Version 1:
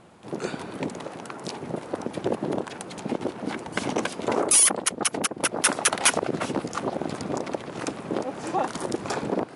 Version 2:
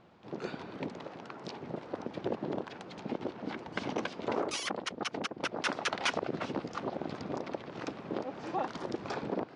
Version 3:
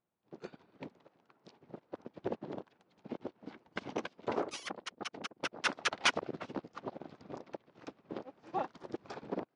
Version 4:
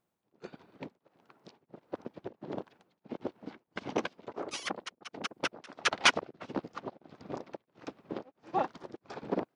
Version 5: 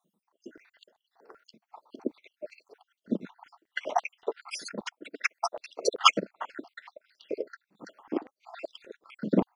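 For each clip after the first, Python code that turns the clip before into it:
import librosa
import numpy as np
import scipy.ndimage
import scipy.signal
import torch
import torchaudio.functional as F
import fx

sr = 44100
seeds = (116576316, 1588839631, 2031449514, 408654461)

y1 = scipy.signal.sosfilt(scipy.signal.butter(4, 5200.0, 'lowpass', fs=sr, output='sos'), x)
y1 = F.gain(torch.from_numpy(y1), -8.0).numpy()
y2 = fx.upward_expand(y1, sr, threshold_db=-49.0, expansion=2.5)
y2 = F.gain(torch.from_numpy(y2), 4.0).numpy()
y3 = y2 * np.abs(np.cos(np.pi * 1.5 * np.arange(len(y2)) / sr))
y3 = F.gain(torch.from_numpy(y3), 6.0).numpy()
y4 = fx.spec_dropout(y3, sr, seeds[0], share_pct=64)
y4 = fx.filter_held_highpass(y4, sr, hz=5.2, low_hz=200.0, high_hz=2900.0)
y4 = F.gain(torch.from_numpy(y4), 5.5).numpy()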